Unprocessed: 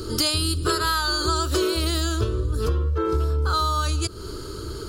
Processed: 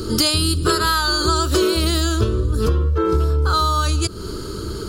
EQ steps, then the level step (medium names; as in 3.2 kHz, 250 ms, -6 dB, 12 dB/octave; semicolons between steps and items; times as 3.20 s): peaking EQ 200 Hz +7.5 dB 0.66 oct; +4.5 dB